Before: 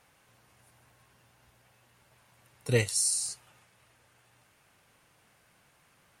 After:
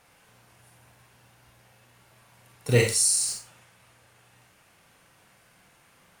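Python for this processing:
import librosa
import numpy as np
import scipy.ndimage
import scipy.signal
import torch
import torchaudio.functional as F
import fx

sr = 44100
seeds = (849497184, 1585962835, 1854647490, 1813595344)

y = fx.delta_hold(x, sr, step_db=-42.0, at=(2.68, 3.33))
y = fx.rev_schroeder(y, sr, rt60_s=0.3, comb_ms=33, drr_db=2.0)
y = y * librosa.db_to_amplitude(3.5)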